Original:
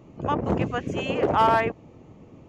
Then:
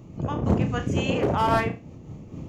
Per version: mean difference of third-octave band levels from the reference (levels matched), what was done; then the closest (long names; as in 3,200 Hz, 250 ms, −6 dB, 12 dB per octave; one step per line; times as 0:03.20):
3.5 dB: camcorder AGC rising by 6.1 dB per second
bass and treble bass +9 dB, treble +8 dB
flutter between parallel walls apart 5.8 metres, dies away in 0.28 s
amplitude modulation by smooth noise, depth 60%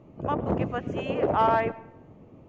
2.5 dB: low-pass filter 2,100 Hz 6 dB per octave
parametric band 610 Hz +3 dB 0.37 octaves
comb and all-pass reverb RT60 0.87 s, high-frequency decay 0.55×, pre-delay 60 ms, DRR 18.5 dB
level −2.5 dB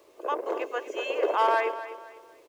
11.5 dB: Butterworth high-pass 340 Hz 48 dB per octave
comb filter 1.9 ms, depth 37%
bit reduction 10 bits
on a send: repeating echo 249 ms, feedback 34%, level −13 dB
on the sum: level −3.5 dB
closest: second